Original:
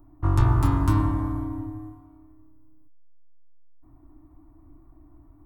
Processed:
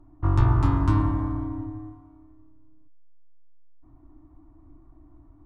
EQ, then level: distance through air 96 m; 0.0 dB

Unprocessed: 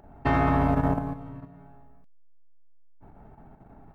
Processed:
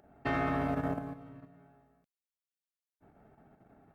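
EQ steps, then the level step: high-pass 120 Hz 6 dB/octave; bass shelf 320 Hz -5.5 dB; peaking EQ 940 Hz -10.5 dB 0.4 oct; -4.0 dB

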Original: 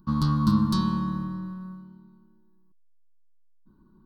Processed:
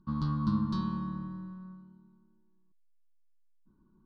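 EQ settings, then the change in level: distance through air 160 m; -7.5 dB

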